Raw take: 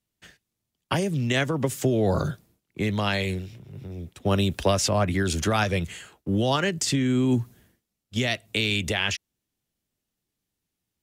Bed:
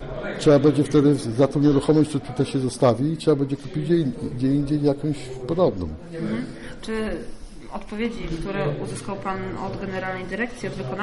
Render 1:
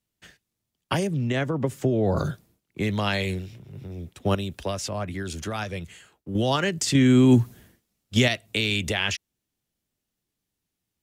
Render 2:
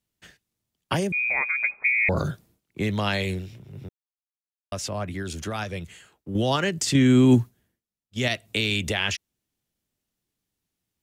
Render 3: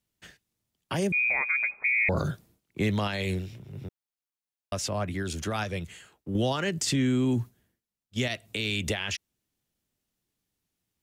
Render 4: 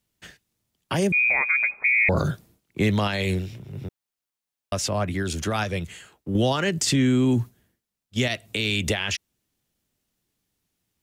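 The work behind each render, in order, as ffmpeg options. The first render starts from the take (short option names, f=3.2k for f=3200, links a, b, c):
-filter_complex "[0:a]asettb=1/sr,asplit=3[a][b][c];[a]atrim=end=1.074[d];[b]atrim=start=1.07:end=2.17,asetpts=PTS-STARTPTS,afade=t=in:d=0.004:c=qsin,afade=t=out:st=1.096:d=0.004:c=qsin,highshelf=f=2.3k:g=-11.5[e];[c]atrim=start=2.166[f];[d][e]acrossfade=d=0.004:c1=hsin:c2=qsin[g];[g][f]acrossfade=d=0.004:c1=qsin:c2=hsin,asplit=5[h][i][j][k][l];[h]atrim=end=4.352[m];[i]atrim=start=4.348:end=6.352,asetpts=PTS-STARTPTS,volume=-7.5dB[n];[j]atrim=start=6.348:end=6.952[o];[k]atrim=start=6.948:end=8.282,asetpts=PTS-STARTPTS,volume=6dB[p];[l]atrim=start=8.278[q];[m][n]acrossfade=d=0.004:c1=hsin:c2=hsin[r];[r][o]acrossfade=d=0.004:c1=hsin:c2=hsin[s];[s][p]acrossfade=d=0.004:c1=hsin:c2=hsin[t];[t][q]acrossfade=d=0.004:c1=hsin:c2=hsin"
-filter_complex "[0:a]asettb=1/sr,asplit=3[a][b][c];[a]atrim=end=1.124[d];[b]atrim=start=1.12:end=2.09,asetpts=PTS-STARTPTS,afade=t=in:d=0.004:c=qsin,afade=t=out:st=0.966:d=0.004:c=qsin,lowpass=f=2.2k:t=q:w=0.5098,lowpass=f=2.2k:t=q:w=0.6013,lowpass=f=2.2k:t=q:w=0.9,lowpass=f=2.2k:t=q:w=2.563,afreqshift=-2600[e];[c]atrim=start=2.086[f];[d][e]acrossfade=d=0.004:c1=hsin:c2=qsin[g];[g][f]acrossfade=d=0.004:c1=qsin:c2=hsin,asplit=5[h][i][j][k][l];[h]atrim=end=3.89,asetpts=PTS-STARTPTS,afade=t=out:st=3.886:d=0.004:c=hsin[m];[i]atrim=start=3.89:end=4.72,asetpts=PTS-STARTPTS,volume=0[n];[j]atrim=start=4.72:end=7.51,asetpts=PTS-STARTPTS,afade=t=in:d=0.004:c=hsin,afade=t=out:st=2.62:d=0.17:silence=0.133352[o];[k]atrim=start=7.51:end=8.15,asetpts=PTS-STARTPTS,volume=-17.5dB[p];[l]atrim=start=8.15,asetpts=PTS-STARTPTS,afade=t=in:d=0.17:silence=0.133352[q];[m][n][o][p][q]concat=n=5:v=0:a=1"
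-af "alimiter=limit=-17.5dB:level=0:latency=1:release=130"
-af "volume=5dB"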